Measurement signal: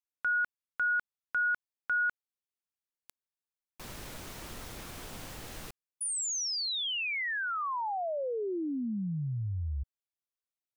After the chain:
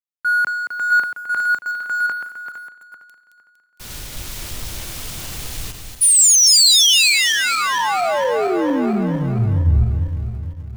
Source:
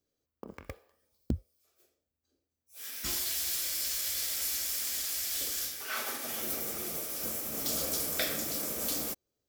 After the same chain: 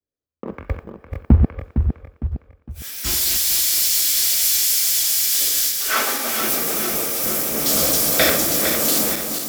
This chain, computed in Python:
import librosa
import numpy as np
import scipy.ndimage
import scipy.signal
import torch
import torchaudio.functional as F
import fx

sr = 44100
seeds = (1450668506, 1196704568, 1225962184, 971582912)

p1 = fx.reverse_delay_fb(x, sr, ms=229, feedback_pct=72, wet_db=-5.0)
p2 = fx.power_curve(p1, sr, exponent=0.7)
p3 = fx.quant_dither(p2, sr, seeds[0], bits=6, dither='none')
p4 = p2 + (p3 * 10.0 ** (-10.0 / 20.0))
p5 = fx.band_widen(p4, sr, depth_pct=100)
y = p5 * 10.0 ** (7.0 / 20.0)